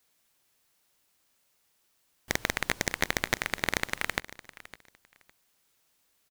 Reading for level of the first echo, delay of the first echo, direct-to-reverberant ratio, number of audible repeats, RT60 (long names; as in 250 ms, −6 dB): −17.5 dB, 558 ms, no reverb audible, 2, no reverb audible